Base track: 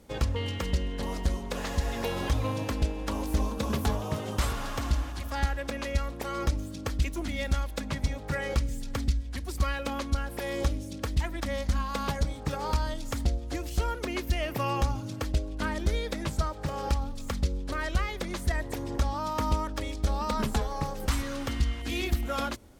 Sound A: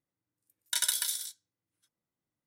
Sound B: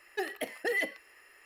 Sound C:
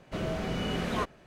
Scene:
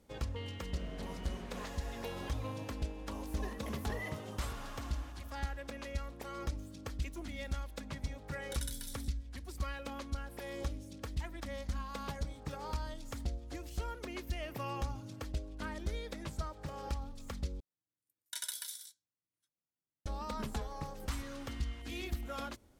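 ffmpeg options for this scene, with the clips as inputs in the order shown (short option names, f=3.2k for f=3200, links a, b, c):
-filter_complex "[1:a]asplit=2[a][b];[0:a]volume=-10.5dB,asplit=2[c][d];[c]atrim=end=17.604[e];[b]atrim=end=2.46,asetpts=PTS-STARTPTS,volume=-11.5dB[f];[d]atrim=start=20.056[g];[3:a]atrim=end=1.26,asetpts=PTS-STARTPTS,volume=-17.5dB,afade=t=in:d=0.004:c=hsin,afade=t=out:st=1.256:d=0.004:c=hsin,adelay=610[h];[2:a]atrim=end=1.45,asetpts=PTS-STARTPTS,volume=-13.5dB,afade=t=in:d=0.004:c=hsin,afade=t=out:st=1.446:d=0.004:c=hsin,adelay=143325S[i];[a]atrim=end=2.46,asetpts=PTS-STARTPTS,volume=-15.5dB,afade=t=in:d=0.004:c=hsin,afade=t=out:st=2.456:d=0.004:c=hsin,adelay=7790[j];[e][f]acrossfade=d=0.004:c1=hsin:c2=hsin[k];[k][g]acrossfade=d=0.004:c1=hsin:c2=hsin[l];[l][h][i][j]amix=inputs=4:normalize=0"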